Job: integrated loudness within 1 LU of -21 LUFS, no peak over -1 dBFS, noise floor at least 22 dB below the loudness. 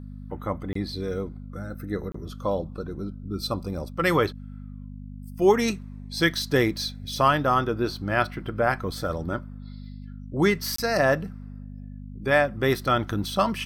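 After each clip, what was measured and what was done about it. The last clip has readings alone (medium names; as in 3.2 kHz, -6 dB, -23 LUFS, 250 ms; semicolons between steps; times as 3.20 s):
dropouts 3; longest dropout 24 ms; hum 50 Hz; highest harmonic 250 Hz; hum level -36 dBFS; loudness -25.5 LUFS; peak level -7.0 dBFS; loudness target -21.0 LUFS
-> interpolate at 0.73/2.12/10.76 s, 24 ms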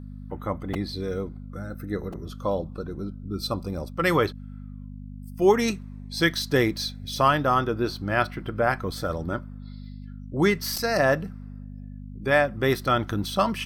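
dropouts 0; hum 50 Hz; highest harmonic 250 Hz; hum level -36 dBFS
-> de-hum 50 Hz, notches 5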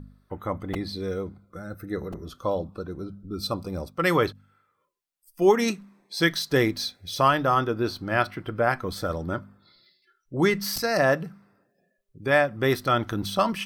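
hum not found; loudness -26.0 LUFS; peak level -7.5 dBFS; loudness target -21.0 LUFS
-> trim +5 dB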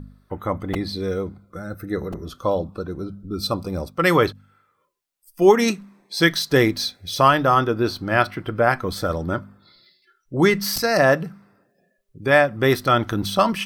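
loudness -21.0 LUFS; peak level -2.5 dBFS; noise floor -68 dBFS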